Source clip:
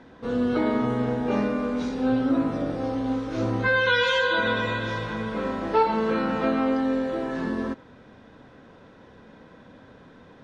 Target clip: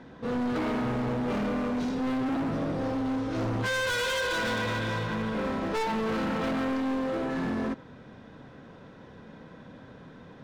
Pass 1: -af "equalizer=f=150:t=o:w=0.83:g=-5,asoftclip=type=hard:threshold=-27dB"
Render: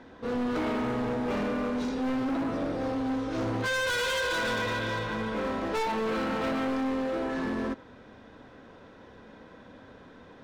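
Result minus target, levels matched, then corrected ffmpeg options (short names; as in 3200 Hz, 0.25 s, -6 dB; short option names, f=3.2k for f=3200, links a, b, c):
125 Hz band -4.0 dB
-af "equalizer=f=150:t=o:w=0.83:g=5.5,asoftclip=type=hard:threshold=-27dB"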